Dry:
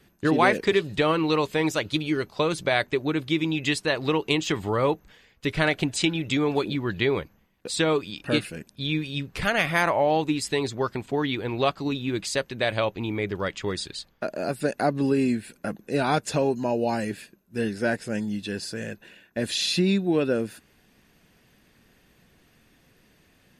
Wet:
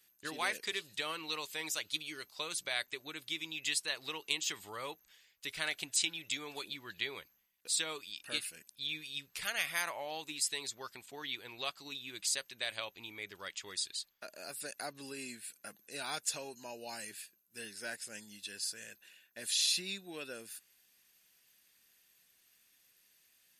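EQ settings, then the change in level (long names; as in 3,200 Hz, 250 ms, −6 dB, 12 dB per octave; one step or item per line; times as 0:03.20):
first-order pre-emphasis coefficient 0.97
0.0 dB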